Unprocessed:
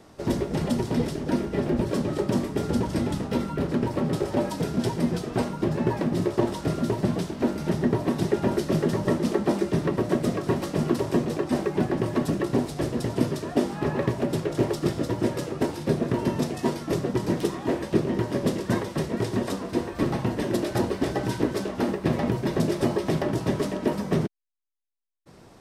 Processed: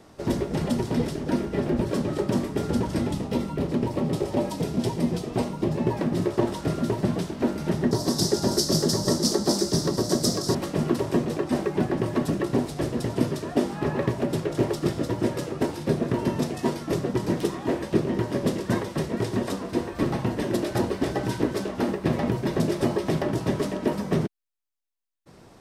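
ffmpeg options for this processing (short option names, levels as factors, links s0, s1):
-filter_complex "[0:a]asettb=1/sr,asplit=3[s0][s1][s2];[s0]atrim=end=3.094[s3];[s1]atrim=start=3.09:end=5.98,asetpts=PTS-STARTPTS,afade=t=in:d=0.004:c=qsin,afade=t=out:st=2.886:d=0.004:c=qsin,equalizer=f=1500:t=o:w=0.57:g=-7[s4];[s2]atrim=start=5.976[s5];[s3][s4]acrossfade=d=0.004:c1=hsin:c2=qsin[s6];[s6][s5]acrossfade=d=0.004:c1=qsin:c2=hsin,asettb=1/sr,asplit=3[s7][s8][s9];[s7]atrim=end=7.914[s10];[s8]atrim=start=7.91:end=10.55,asetpts=PTS-STARTPTS,afade=t=in:d=0.004:c=qsin,afade=t=out:st=2.636:d=0.004:c=qsin,highshelf=f=3600:t=q:w=3:g=12[s11];[s9]atrim=start=10.546[s12];[s10][s11]acrossfade=d=0.004:c1=hsin:c2=qsin[s13];[s13][s12]acrossfade=d=0.004:c1=qsin:c2=hsin"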